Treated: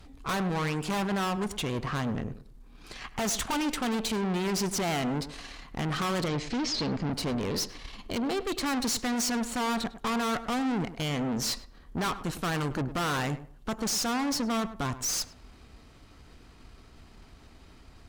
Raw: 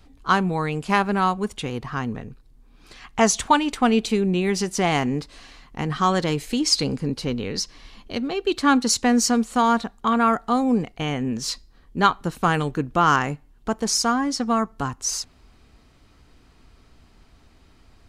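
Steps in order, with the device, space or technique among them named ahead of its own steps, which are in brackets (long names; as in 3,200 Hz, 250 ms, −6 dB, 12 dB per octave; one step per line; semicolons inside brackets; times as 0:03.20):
rockabilly slapback (tube saturation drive 33 dB, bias 0.7; tape delay 103 ms, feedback 27%, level −11 dB, low-pass 1,500 Hz)
0:06.28–0:07.11: low-pass filter 5,900 Hz 24 dB per octave
level +5.5 dB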